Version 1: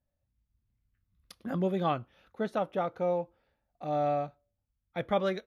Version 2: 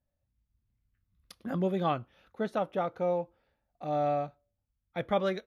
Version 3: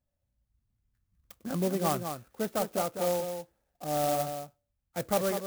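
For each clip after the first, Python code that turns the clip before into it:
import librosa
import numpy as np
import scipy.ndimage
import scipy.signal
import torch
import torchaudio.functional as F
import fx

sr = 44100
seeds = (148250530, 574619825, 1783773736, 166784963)

y1 = x
y2 = y1 + 10.0 ** (-7.5 / 20.0) * np.pad(y1, (int(201 * sr / 1000.0), 0))[:len(y1)]
y2 = fx.clock_jitter(y2, sr, seeds[0], jitter_ms=0.08)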